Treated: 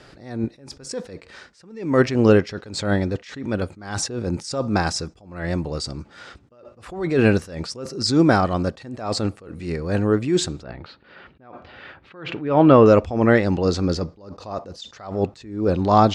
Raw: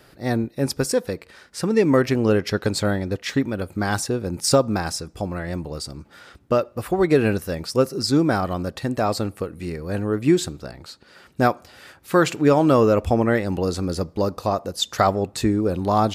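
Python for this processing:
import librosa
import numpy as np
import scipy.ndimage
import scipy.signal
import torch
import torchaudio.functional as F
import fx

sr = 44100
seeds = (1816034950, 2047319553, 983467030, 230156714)

y = fx.lowpass(x, sr, hz=fx.steps((0.0, 7800.0), (10.63, 3300.0), (12.86, 6400.0)), slope=24)
y = fx.attack_slew(y, sr, db_per_s=100.0)
y = y * librosa.db_to_amplitude(4.5)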